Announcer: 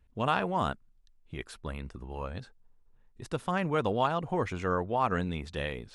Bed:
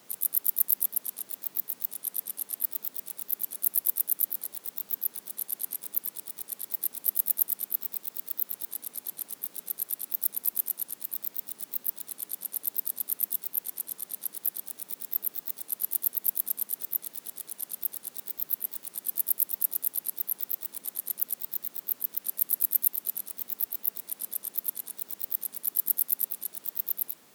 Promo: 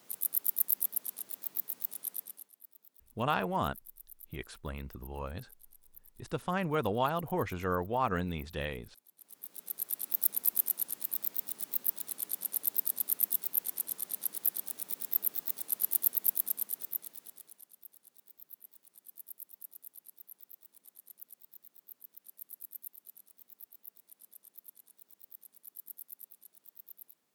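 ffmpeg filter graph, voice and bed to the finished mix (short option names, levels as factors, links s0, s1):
-filter_complex "[0:a]adelay=3000,volume=0.75[s0];[1:a]volume=10.6,afade=t=out:st=2.04:d=0.47:silence=0.0891251,afade=t=in:st=9.16:d=1.04:silence=0.0562341,afade=t=out:st=16.09:d=1.59:silence=0.0944061[s1];[s0][s1]amix=inputs=2:normalize=0"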